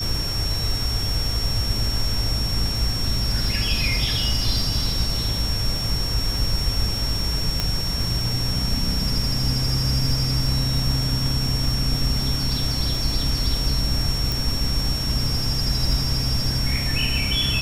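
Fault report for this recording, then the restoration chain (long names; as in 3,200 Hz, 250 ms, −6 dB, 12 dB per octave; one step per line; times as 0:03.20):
surface crackle 33 per second −28 dBFS
whistle 5,500 Hz −26 dBFS
0:07.60: click −7 dBFS
0:14.32: click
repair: click removal
notch filter 5,500 Hz, Q 30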